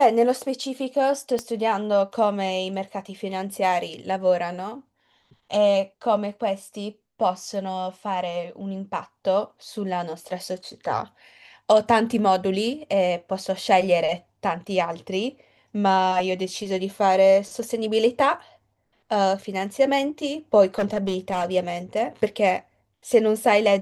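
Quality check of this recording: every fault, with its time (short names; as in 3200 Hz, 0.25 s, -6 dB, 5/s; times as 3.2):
1.39 pop -15 dBFS
20.78–21.54 clipped -19 dBFS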